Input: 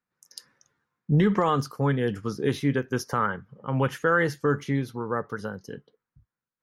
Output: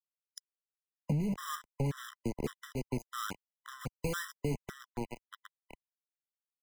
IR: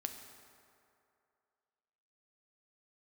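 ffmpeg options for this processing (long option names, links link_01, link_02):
-filter_complex "[0:a]aecho=1:1:196|392:0.106|0.0265,asettb=1/sr,asplit=3[link_01][link_02][link_03];[link_01]atrim=end=5.044[link_04];[link_02]atrim=start=5.04:end=5.66,asetpts=PTS-STARTPTS,afade=type=in:duration=0.004:curve=qsin,afade=type=out:start_time=0.616:duration=0.004:curve=qsin,acrossover=split=560|1500[link_05][link_06][link_07];[link_05]acompressor=threshold=-35dB:ratio=4[link_08];[link_06]acompressor=threshold=-41dB:ratio=4[link_09];[link_07]acompressor=threshold=-51dB:ratio=4[link_10];[link_08][link_09][link_10]amix=inputs=3:normalize=0[link_11];[link_03]atrim=start=5.656[link_12];[link_04][link_11]acrossfade=duration=0.004:curve1=hsin:curve2=qsin[link_13];[link_13][link_12]acrossfade=duration=0.004:curve1=qsin:curve2=hsin,aeval=exprs='val(0)*gte(abs(val(0)),0.0562)':channel_layout=same,equalizer=frequency=96:width_type=o:width=1.4:gain=-7,bandreject=frequency=4300:width=5.1,afftdn=noise_reduction=12:noise_floor=-49,lowshelf=frequency=150:gain=8,acrossover=split=220|5900[link_14][link_15][link_16];[link_15]asoftclip=type=tanh:threshold=-33dB[link_17];[link_14][link_17][link_16]amix=inputs=3:normalize=0,acompressor=threshold=-31dB:ratio=10,afftfilt=real='re*gt(sin(2*PI*1.8*pts/sr)*(1-2*mod(floor(b*sr/1024/1000),2)),0)':imag='im*gt(sin(2*PI*1.8*pts/sr)*(1-2*mod(floor(b*sr/1024/1000),2)),0)':win_size=1024:overlap=0.75,volume=2.5dB"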